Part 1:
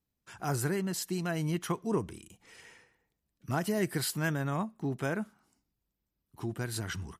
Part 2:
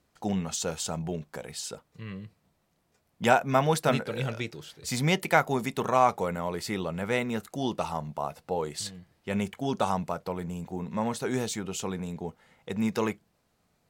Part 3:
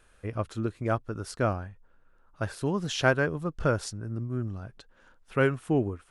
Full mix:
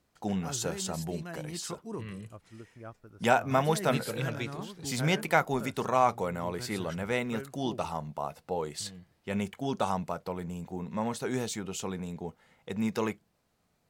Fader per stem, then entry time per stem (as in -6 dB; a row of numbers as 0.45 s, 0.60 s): -8.5 dB, -2.5 dB, -18.0 dB; 0.00 s, 0.00 s, 1.95 s